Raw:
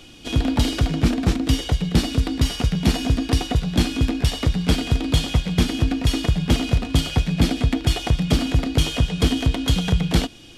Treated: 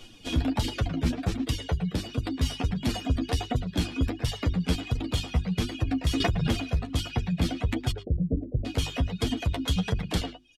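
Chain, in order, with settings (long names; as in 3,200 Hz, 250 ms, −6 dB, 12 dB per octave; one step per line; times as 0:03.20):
0:07.91–0:08.65: elliptic low-pass filter 550 Hz, stop band 50 dB
reverb reduction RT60 0.95 s
0:01.58–0:02.24: downward compressor 6 to 1, threshold −20 dBFS, peak gain reduction 8 dB
reverb reduction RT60 0.68 s
brickwall limiter −13.5 dBFS, peak gain reduction 6 dB
low-shelf EQ 64 Hz +6 dB
mains-hum notches 50/100/150/200/250/300/350/400 Hz
far-end echo of a speakerphone 110 ms, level −10 dB
flanger 1.4 Hz, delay 8 ms, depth 4.4 ms, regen +16%
0:06.20–0:06.67: background raised ahead of every attack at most 28 dB per second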